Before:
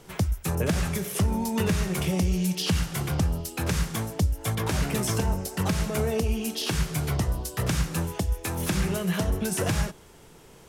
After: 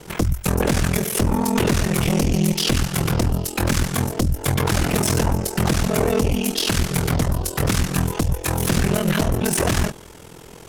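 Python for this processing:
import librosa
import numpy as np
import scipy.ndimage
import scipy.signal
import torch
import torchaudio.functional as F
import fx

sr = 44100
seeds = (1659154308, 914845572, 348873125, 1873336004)

y = fx.cheby_harmonics(x, sr, harmonics=(4, 5), levels_db=(-8, -8), full_scale_db=-13.5)
y = y * np.sin(2.0 * np.pi * 21.0 * np.arange(len(y)) / sr)
y = y * 10.0 ** (3.0 / 20.0)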